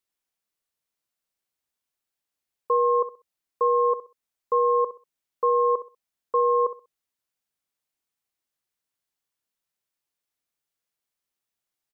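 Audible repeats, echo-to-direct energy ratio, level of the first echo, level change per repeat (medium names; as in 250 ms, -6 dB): 2, -13.5 dB, -13.5 dB, -13.0 dB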